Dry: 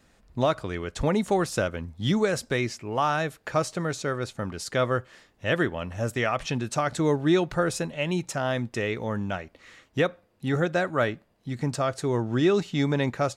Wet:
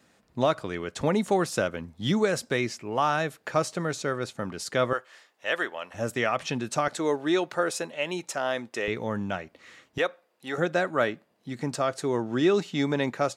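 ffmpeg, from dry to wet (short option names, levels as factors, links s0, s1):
-af "asetnsamples=n=441:p=0,asendcmd='4.93 highpass f 600;5.94 highpass f 160;6.88 highpass f 350;8.88 highpass f 120;9.98 highpass f 480;10.58 highpass f 190',highpass=140"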